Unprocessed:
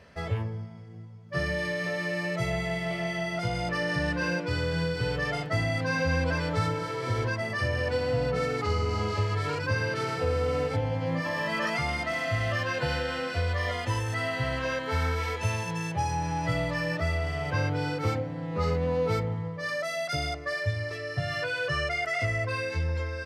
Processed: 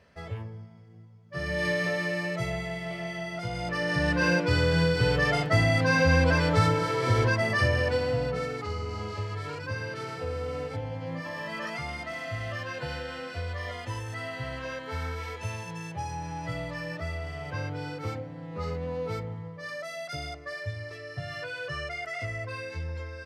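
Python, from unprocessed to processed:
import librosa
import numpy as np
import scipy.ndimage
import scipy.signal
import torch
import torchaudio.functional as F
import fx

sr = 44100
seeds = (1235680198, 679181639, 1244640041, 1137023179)

y = fx.gain(x, sr, db=fx.line((1.33, -6.5), (1.68, 4.0), (2.73, -4.0), (3.47, -4.0), (4.28, 5.0), (7.58, 5.0), (8.7, -6.0)))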